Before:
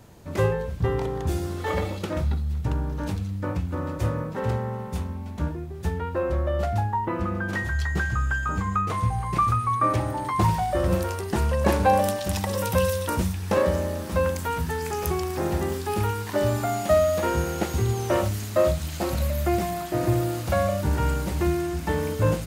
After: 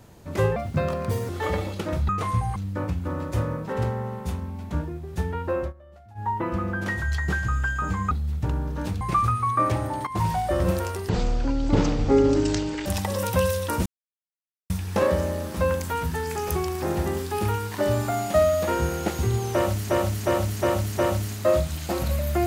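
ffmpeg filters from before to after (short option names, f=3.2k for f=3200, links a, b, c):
-filter_complex "[0:a]asplit=17[a][b][c][d][e][f][g][h][i][j][k][l][m][n][o][p][q];[a]atrim=end=0.564[r];[b]atrim=start=0.56:end=1.53,asetpts=PTS-STARTPTS,asetrate=58653,aresample=44100,atrim=end_sample=32163,asetpts=PTS-STARTPTS[s];[c]atrim=start=1.526:end=2.332[t];[d]atrim=start=8.778:end=9.252[u];[e]atrim=start=3.228:end=6.4,asetpts=PTS-STARTPTS,afade=t=out:st=2.992:d=0.18:c=qsin:silence=0.0630957[v];[f]atrim=start=6.4:end=6.82,asetpts=PTS-STARTPTS,volume=-24dB[w];[g]atrim=start=6.82:end=8.782,asetpts=PTS-STARTPTS,afade=t=in:d=0.18:c=qsin:silence=0.0630957[x];[h]atrim=start=2.328:end=3.232[y];[i]atrim=start=9.248:end=10.31,asetpts=PTS-STARTPTS,afade=t=out:st=1.058:d=0.004:c=hsin:silence=0.211349[z];[j]atrim=start=10.31:end=11.334,asetpts=PTS-STARTPTS,afade=t=in:d=0.25:silence=0.211349[aa];[k]atrim=start=11.33:end=12.25,asetpts=PTS-STARTPTS,asetrate=22932,aresample=44100,atrim=end_sample=78023,asetpts=PTS-STARTPTS[ab];[l]atrim=start=12.246:end=13.25,asetpts=PTS-STARTPTS,afade=t=out:st=1:d=0.004:c=hsin,apad=pad_dur=0.84[ac];[m]atrim=start=13.25:end=18.452,asetpts=PTS-STARTPTS,afade=t=in:d=0.004:c=hsin[ad];[n]atrim=start=18.088:end=18.452[ae];[o]atrim=start=18.088:end=18.452[af];[p]atrim=start=18.088:end=18.452[ag];[q]atrim=start=18.088[ah];[r][s]acrossfade=d=0.004:c1=hsin:c2=hsin[ai];[ai][t]acrossfade=d=0.004:c1=hsin:c2=hsin[aj];[aj][u]acrossfade=d=0.004:c1=hsin:c2=hsin[ak];[v][w][x]concat=n=3:v=0:a=1[al];[ak][al]acrossfade=d=0.004:c1=hsin:c2=hsin[am];[am][y]acrossfade=d=0.004:c1=hsin:c2=hsin[an];[z][aa]concat=n=2:v=0:a=1[ao];[an][ao]acrossfade=d=0.004:c1=hsin:c2=hsin[ap];[ap][ab]acrossfade=d=0.004:c1=hsin:c2=hsin[aq];[ac][ad]concat=n=2:v=0:a=1[ar];[aq][ar]acrossfade=d=0.004:c1=hsin:c2=hsin[as];[as][ae]acrossfade=d=0.004:c1=hsin:c2=hsin[at];[at][af]acrossfade=d=0.004:c1=hsin:c2=hsin[au];[au][ag]acrossfade=d=0.004:c1=hsin:c2=hsin[av];[av][ah]acrossfade=d=0.004:c1=hsin:c2=hsin"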